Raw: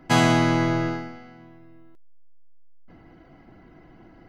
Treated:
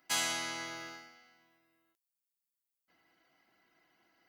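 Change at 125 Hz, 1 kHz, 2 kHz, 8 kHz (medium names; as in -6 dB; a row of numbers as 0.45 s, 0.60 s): -34.0 dB, -17.5 dB, -11.5 dB, -1.0 dB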